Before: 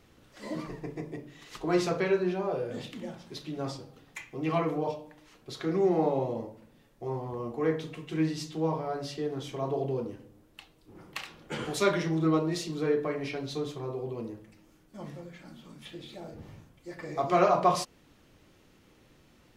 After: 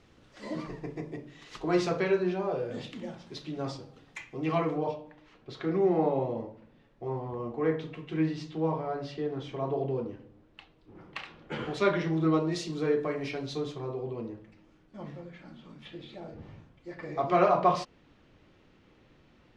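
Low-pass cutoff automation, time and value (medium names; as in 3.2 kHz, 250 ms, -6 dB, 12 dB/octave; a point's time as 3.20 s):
4.60 s 6.4 kHz
5.04 s 3.3 kHz
11.93 s 3.3 kHz
12.71 s 8 kHz
13.41 s 8 kHz
14.20 s 3.7 kHz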